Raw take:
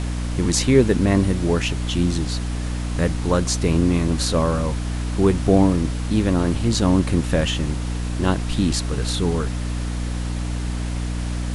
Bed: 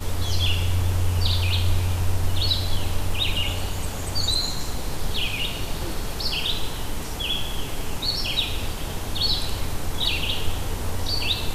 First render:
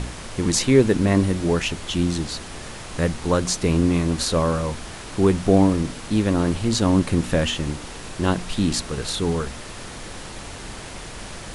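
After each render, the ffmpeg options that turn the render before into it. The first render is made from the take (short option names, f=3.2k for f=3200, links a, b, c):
-af "bandreject=f=60:t=h:w=4,bandreject=f=120:t=h:w=4,bandreject=f=180:t=h:w=4,bandreject=f=240:t=h:w=4,bandreject=f=300:t=h:w=4"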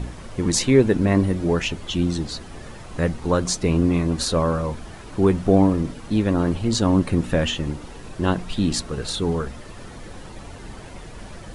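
-af "afftdn=nr=10:nf=-36"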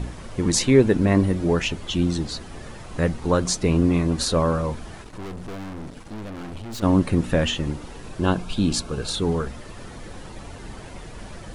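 -filter_complex "[0:a]asplit=3[a][b][c];[a]afade=t=out:st=5.02:d=0.02[d];[b]aeval=exprs='(tanh(44.7*val(0)+0.7)-tanh(0.7))/44.7':c=same,afade=t=in:st=5.02:d=0.02,afade=t=out:st=6.82:d=0.02[e];[c]afade=t=in:st=6.82:d=0.02[f];[d][e][f]amix=inputs=3:normalize=0,asettb=1/sr,asplit=3[g][h][i];[g]atrim=end=8.204[j];[h]atrim=start=8.2:end=9.15,asetpts=PTS-STARTPTS,afade=t=in:d=0.004:c=qsin,afade=t=out:st=0.946:d=0.004:c=qsin,asuperstop=centerf=1900:order=8:qfactor=6.7[k];[i]atrim=start=9.146[l];[j][k]acrossfade=d=0.004:c1=hsin:c2=qsin[m];[m][l]acrossfade=d=0.004:c1=qsin:c2=hsin"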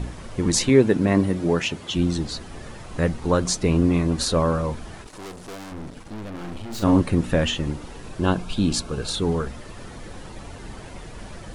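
-filter_complex "[0:a]asettb=1/sr,asplit=3[a][b][c];[a]atrim=end=0.694[d];[b]atrim=start=0.69:end=1.96,asetpts=PTS-STARTPTS,afade=t=in:d=0.004:c=qsin,afade=t=out:st=1.266:d=0.004:c=qsin,highpass=110[e];[c]atrim=start=1.956[f];[d][e]acrossfade=d=0.004:c1=hsin:c2=qsin[g];[g][f]acrossfade=d=0.004:c1=qsin:c2=hsin,asettb=1/sr,asplit=3[h][i][j];[h]atrim=end=5.074[k];[i]atrim=start=5.07:end=5.72,asetpts=PTS-STARTPTS,afade=t=in:d=0.004:c=qsin,afade=t=out:st=0.646:d=0.004:c=qsin,bass=f=250:g=-9,treble=f=4k:g=8[l];[j]atrim=start=5.716[m];[k][l]acrossfade=d=0.004:c1=hsin:c2=qsin[n];[n][m]acrossfade=d=0.004:c1=qsin:c2=hsin,asettb=1/sr,asplit=3[o][p][q];[o]atrim=end=6.304[r];[p]atrim=start=6.3:end=7.01,asetpts=PTS-STARTPTS,afade=t=in:d=0.004:c=qsin,afade=t=out:st=0.706:d=0.004:c=qsin,asplit=2[s][t];[t]adelay=40,volume=-5.5dB[u];[s][u]amix=inputs=2:normalize=0,atrim=end_sample=31311[v];[q]atrim=start=7.006[w];[r][v]acrossfade=d=0.004:c1=hsin:c2=qsin[x];[x][w]acrossfade=d=0.004:c1=qsin:c2=hsin"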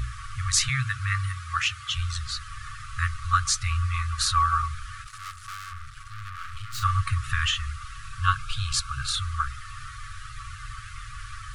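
-af "equalizer=f=1.1k:t=o:w=0.81:g=11,afftfilt=real='re*(1-between(b*sr/4096,130,1100))':imag='im*(1-between(b*sr/4096,130,1100))':win_size=4096:overlap=0.75"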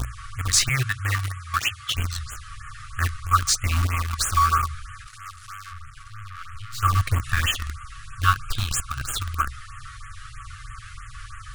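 -filter_complex "[0:a]asplit=2[a][b];[b]acrusher=bits=3:mix=0:aa=0.000001,volume=-6dB[c];[a][c]amix=inputs=2:normalize=0,afftfilt=real='re*(1-between(b*sr/1024,400*pow(4800/400,0.5+0.5*sin(2*PI*3.1*pts/sr))/1.41,400*pow(4800/400,0.5+0.5*sin(2*PI*3.1*pts/sr))*1.41))':imag='im*(1-between(b*sr/1024,400*pow(4800/400,0.5+0.5*sin(2*PI*3.1*pts/sr))/1.41,400*pow(4800/400,0.5+0.5*sin(2*PI*3.1*pts/sr))*1.41))':win_size=1024:overlap=0.75"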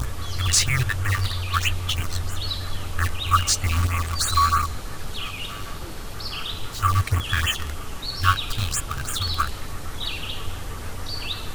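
-filter_complex "[1:a]volume=-6dB[a];[0:a][a]amix=inputs=2:normalize=0"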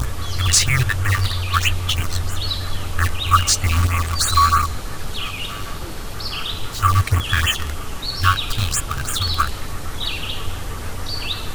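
-af "volume=4.5dB,alimiter=limit=-2dB:level=0:latency=1"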